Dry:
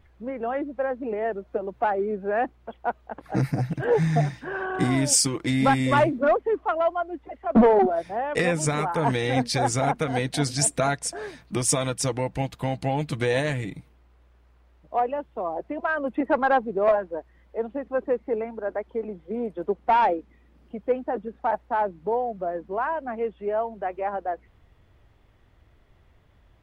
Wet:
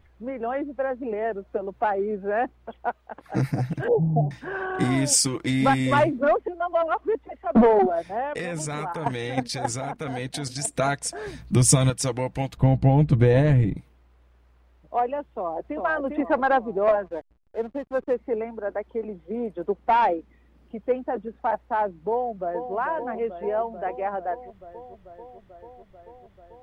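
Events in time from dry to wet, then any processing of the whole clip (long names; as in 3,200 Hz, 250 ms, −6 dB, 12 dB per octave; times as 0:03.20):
0:02.89–0:03.36: low-shelf EQ 500 Hz −6.5 dB
0:03.88–0:04.31: Butterworth low-pass 810 Hz 48 dB per octave
0:06.48–0:07.15: reverse
0:08.27–0:10.76: output level in coarse steps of 10 dB
0:11.26–0:11.90: bass and treble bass +13 dB, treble +4 dB
0:12.57–0:13.77: spectral tilt −4 dB per octave
0:15.24–0:15.77: delay throw 400 ms, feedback 45%, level −3.5 dB
0:17.06–0:18.14: slack as between gear wheels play −40.5 dBFS
0:22.10–0:22.74: delay throw 440 ms, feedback 80%, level −8 dB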